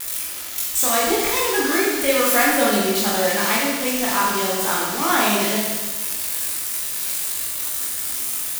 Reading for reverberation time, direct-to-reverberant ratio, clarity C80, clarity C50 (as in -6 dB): 1.3 s, -6.0 dB, 2.0 dB, 0.0 dB